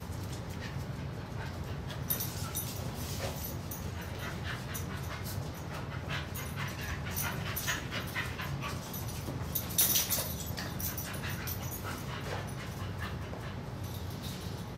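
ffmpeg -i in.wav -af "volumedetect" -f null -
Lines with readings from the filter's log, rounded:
mean_volume: -37.0 dB
max_volume: -12.5 dB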